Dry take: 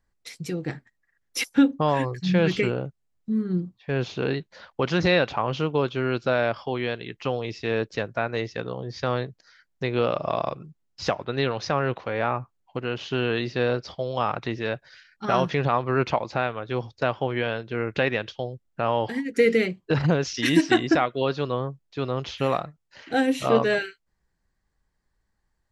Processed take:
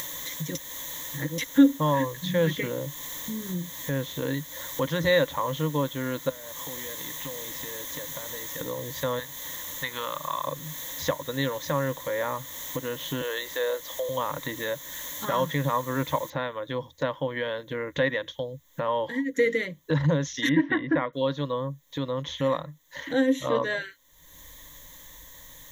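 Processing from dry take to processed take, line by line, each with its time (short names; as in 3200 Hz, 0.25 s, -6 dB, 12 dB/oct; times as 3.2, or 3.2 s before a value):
0.55–1.38 reverse
6.29–8.61 compressor 5:1, threshold -40 dBFS
9.19–10.45 resonant low shelf 730 Hz -11 dB, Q 1.5
13.21–14.09 HPF 420 Hz 24 dB/oct
16.3 noise floor step -41 dB -69 dB
20.49–21.13 LPF 2500 Hz 24 dB/oct
whole clip: ripple EQ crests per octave 1.1, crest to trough 16 dB; upward compressor, threshold -20 dBFS; dynamic EQ 1400 Hz, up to +8 dB, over -49 dBFS, Q 8; gain -6.5 dB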